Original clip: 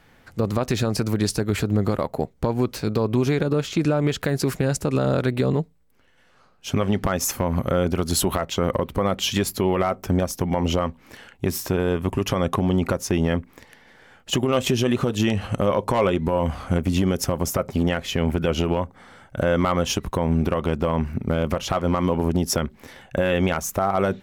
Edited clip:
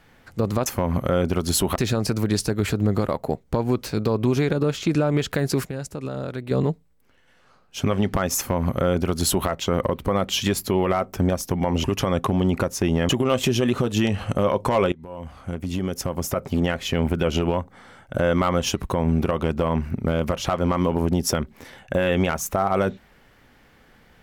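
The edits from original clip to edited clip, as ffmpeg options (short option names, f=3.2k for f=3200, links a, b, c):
-filter_complex "[0:a]asplit=8[a][b][c][d][e][f][g][h];[a]atrim=end=0.662[i];[b]atrim=start=7.278:end=8.382[j];[c]atrim=start=0.658:end=4.552[k];[d]atrim=start=4.548:end=5.412,asetpts=PTS-STARTPTS,volume=-9dB[l];[e]atrim=start=5.408:end=10.742[m];[f]atrim=start=12.128:end=13.382[n];[g]atrim=start=14.318:end=16.15,asetpts=PTS-STARTPTS,afade=t=out:st=1.828:d=0.004:c=hsin:silence=0.0794328[o];[h]atrim=start=16.15,asetpts=PTS-STARTPTS,afade=t=in:d=1.81:silence=0.0794328[p];[i][j]acrossfade=d=0.004:c1=hsin:c2=hsin[q];[q][k]acrossfade=d=0.004:c1=hsin:c2=hsin[r];[r][l]acrossfade=d=0.004:c1=hsin:c2=hsin[s];[s][m]acrossfade=d=0.004:c1=hsin:c2=hsin[t];[t][n]acrossfade=d=0.004:c1=hsin:c2=hsin[u];[o][p]concat=n=2:v=0:a=1[v];[u][v]acrossfade=d=0.004:c1=hsin:c2=hsin"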